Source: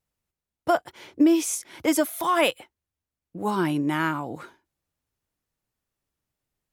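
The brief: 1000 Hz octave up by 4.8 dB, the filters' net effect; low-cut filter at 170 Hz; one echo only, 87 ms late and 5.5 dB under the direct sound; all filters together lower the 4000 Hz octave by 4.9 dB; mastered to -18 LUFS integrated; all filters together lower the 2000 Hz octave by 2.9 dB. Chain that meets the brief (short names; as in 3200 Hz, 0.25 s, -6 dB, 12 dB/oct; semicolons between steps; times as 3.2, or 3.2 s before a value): HPF 170 Hz; bell 1000 Hz +7.5 dB; bell 2000 Hz -6 dB; bell 4000 Hz -5 dB; echo 87 ms -5.5 dB; gain +4.5 dB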